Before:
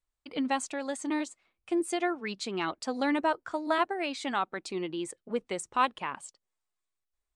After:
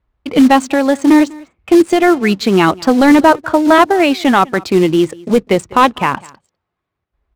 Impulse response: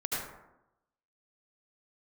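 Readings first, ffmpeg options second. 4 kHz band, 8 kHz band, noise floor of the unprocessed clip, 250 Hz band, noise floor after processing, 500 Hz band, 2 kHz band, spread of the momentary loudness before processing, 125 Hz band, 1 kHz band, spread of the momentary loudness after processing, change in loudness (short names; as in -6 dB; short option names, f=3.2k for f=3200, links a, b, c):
+16.5 dB, +11.5 dB, -85 dBFS, +22.5 dB, -77 dBFS, +20.5 dB, +17.5 dB, 9 LU, +26.5 dB, +18.0 dB, 6 LU, +20.0 dB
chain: -filter_complex "[0:a]highpass=76,aemphasis=mode=reproduction:type=bsi,acrusher=bits=5:mode=log:mix=0:aa=0.000001,apsyclip=22dB,adynamicsmooth=sensitivity=5.5:basefreq=2.6k,asplit=2[a][b];[b]aecho=0:1:199:0.0668[c];[a][c]amix=inputs=2:normalize=0,volume=-2dB"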